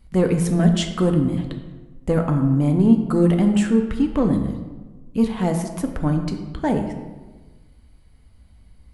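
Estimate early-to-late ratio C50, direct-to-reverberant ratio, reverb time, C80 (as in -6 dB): 7.5 dB, 4.0 dB, 1.3 s, 9.0 dB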